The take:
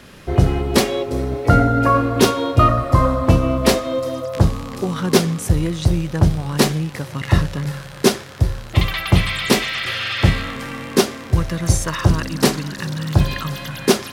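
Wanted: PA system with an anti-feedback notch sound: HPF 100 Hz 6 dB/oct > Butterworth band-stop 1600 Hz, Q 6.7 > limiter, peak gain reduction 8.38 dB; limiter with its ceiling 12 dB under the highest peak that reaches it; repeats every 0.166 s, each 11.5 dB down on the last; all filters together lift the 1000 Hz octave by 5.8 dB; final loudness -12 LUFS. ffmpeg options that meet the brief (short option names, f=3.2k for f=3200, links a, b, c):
-af "equalizer=f=1k:t=o:g=7.5,alimiter=limit=-10.5dB:level=0:latency=1,highpass=f=100:p=1,asuperstop=centerf=1600:order=8:qfactor=6.7,aecho=1:1:166|332|498:0.266|0.0718|0.0194,volume=14dB,alimiter=limit=-3dB:level=0:latency=1"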